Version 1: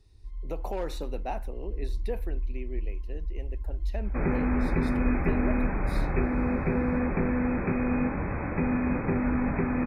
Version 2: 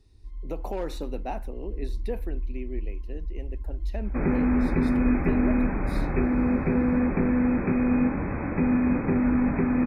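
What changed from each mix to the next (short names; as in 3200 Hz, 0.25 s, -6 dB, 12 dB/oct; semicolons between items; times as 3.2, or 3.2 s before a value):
master: add bell 260 Hz +5.5 dB 0.91 oct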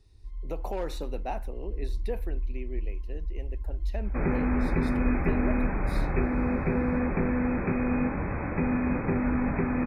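master: add bell 260 Hz -5.5 dB 0.91 oct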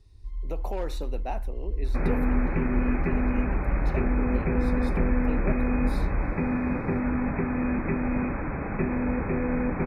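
first sound +4.0 dB; second sound: entry -2.20 s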